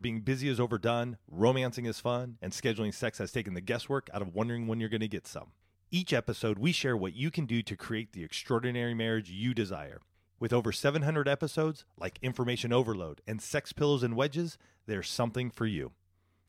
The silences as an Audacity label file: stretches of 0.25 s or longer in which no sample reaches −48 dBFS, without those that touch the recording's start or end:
5.470000	5.920000	silence
10.020000	10.410000	silence
14.550000	14.880000	silence